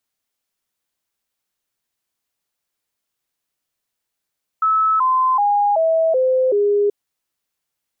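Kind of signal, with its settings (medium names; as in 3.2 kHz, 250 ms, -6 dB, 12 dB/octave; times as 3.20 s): stepped sine 1.3 kHz down, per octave 3, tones 6, 0.38 s, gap 0.00 s -13 dBFS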